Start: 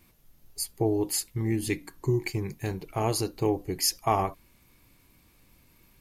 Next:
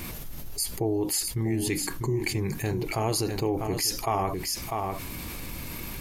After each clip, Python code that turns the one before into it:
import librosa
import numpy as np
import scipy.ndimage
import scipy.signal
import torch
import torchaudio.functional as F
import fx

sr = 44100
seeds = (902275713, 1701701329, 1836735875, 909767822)

y = x + 10.0 ** (-13.0 / 20.0) * np.pad(x, (int(647 * sr / 1000.0), 0))[:len(x)]
y = fx.env_flatten(y, sr, amount_pct=70)
y = F.gain(torch.from_numpy(y), -3.5).numpy()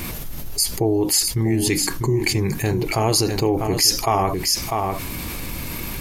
y = fx.dynamic_eq(x, sr, hz=5500.0, q=1.8, threshold_db=-44.0, ratio=4.0, max_db=5)
y = F.gain(torch.from_numpy(y), 7.5).numpy()